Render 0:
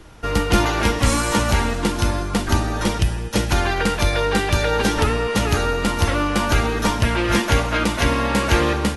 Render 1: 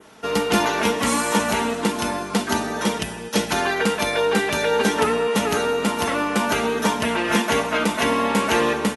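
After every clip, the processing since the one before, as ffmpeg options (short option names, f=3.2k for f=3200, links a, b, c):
-af "highpass=210,aecho=1:1:4.6:0.48,adynamicequalizer=threshold=0.0112:dfrequency=4500:dqfactor=1.4:tfrequency=4500:tqfactor=1.4:attack=5:release=100:ratio=0.375:range=2.5:mode=cutabove:tftype=bell"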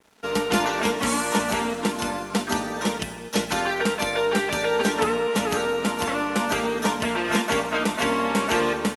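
-af "aeval=exprs='sgn(val(0))*max(abs(val(0))-0.00422,0)':c=same,volume=-2.5dB"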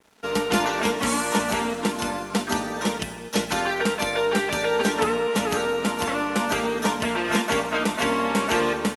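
-af anull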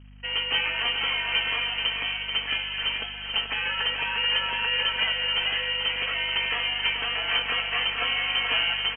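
-af "aecho=1:1:433|866|1299|1732|2165:0.447|0.192|0.0826|0.0355|0.0153,lowpass=f=2.8k:t=q:w=0.5098,lowpass=f=2.8k:t=q:w=0.6013,lowpass=f=2.8k:t=q:w=0.9,lowpass=f=2.8k:t=q:w=2.563,afreqshift=-3300,aeval=exprs='val(0)+0.00708*(sin(2*PI*50*n/s)+sin(2*PI*2*50*n/s)/2+sin(2*PI*3*50*n/s)/3+sin(2*PI*4*50*n/s)/4+sin(2*PI*5*50*n/s)/5)':c=same,volume=-3.5dB"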